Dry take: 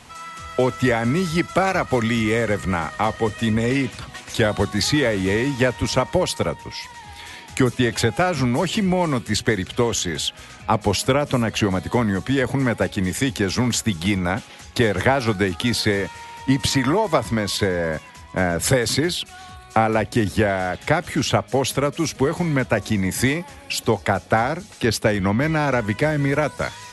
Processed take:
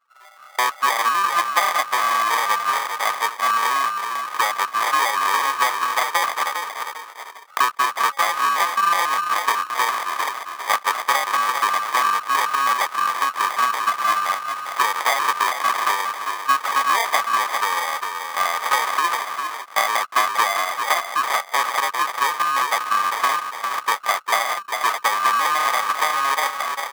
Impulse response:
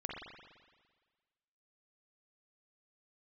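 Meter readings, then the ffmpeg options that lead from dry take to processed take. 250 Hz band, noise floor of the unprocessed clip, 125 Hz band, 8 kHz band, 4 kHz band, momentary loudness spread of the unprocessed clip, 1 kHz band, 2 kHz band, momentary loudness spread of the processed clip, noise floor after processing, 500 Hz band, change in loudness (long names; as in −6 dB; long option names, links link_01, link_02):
−24.5 dB, −43 dBFS, below −35 dB, 0.0 dB, +0.5 dB, 8 LU, +8.5 dB, +3.0 dB, 6 LU, −42 dBFS, −11.5 dB, +1.0 dB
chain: -filter_complex "[0:a]asplit=2[link_01][link_02];[link_02]asplit=5[link_03][link_04][link_05][link_06][link_07];[link_03]adelay=400,afreqshift=-36,volume=-6dB[link_08];[link_04]adelay=800,afreqshift=-72,volume=-14.4dB[link_09];[link_05]adelay=1200,afreqshift=-108,volume=-22.8dB[link_10];[link_06]adelay=1600,afreqshift=-144,volume=-31.2dB[link_11];[link_07]adelay=2000,afreqshift=-180,volume=-39.6dB[link_12];[link_08][link_09][link_10][link_11][link_12]amix=inputs=5:normalize=0[link_13];[link_01][link_13]amix=inputs=2:normalize=0,anlmdn=10,acrusher=samples=32:mix=1:aa=0.000001,highpass=frequency=1200:width_type=q:width=7.6"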